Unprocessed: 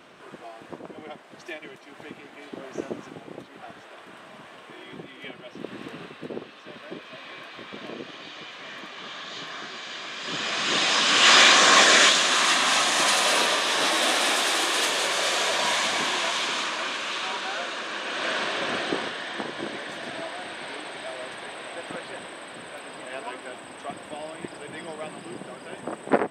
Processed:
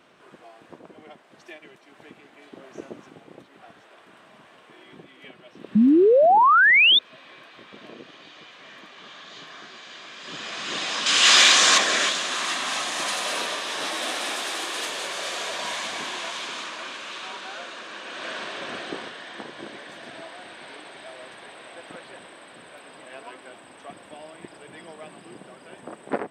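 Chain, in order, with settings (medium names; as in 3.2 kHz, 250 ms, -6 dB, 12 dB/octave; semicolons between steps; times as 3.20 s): 5.75–6.99 s: painted sound rise 200–3700 Hz -9 dBFS; 11.06–11.78 s: treble shelf 2.1 kHz +10 dB; trim -6 dB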